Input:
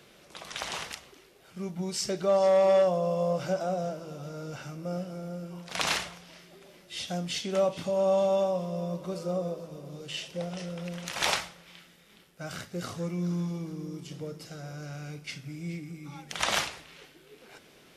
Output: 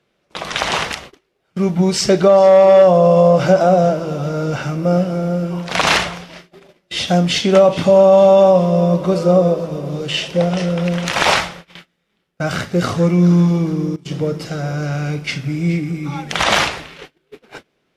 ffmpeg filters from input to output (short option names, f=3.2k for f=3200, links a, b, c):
-filter_complex "[0:a]asplit=3[a][b][c];[a]atrim=end=13.96,asetpts=PTS-STARTPTS,afade=t=out:st=13.68:d=0.28:c=log:silence=0.1[d];[b]atrim=start=13.96:end=14.05,asetpts=PTS-STARTPTS,volume=-20dB[e];[c]atrim=start=14.05,asetpts=PTS-STARTPTS,afade=t=in:d=0.28:c=log:silence=0.1[f];[d][e][f]concat=n=3:v=0:a=1,agate=range=-28dB:threshold=-50dB:ratio=16:detection=peak,lowpass=f=3k:p=1,alimiter=level_in=20dB:limit=-1dB:release=50:level=0:latency=1,volume=-1dB"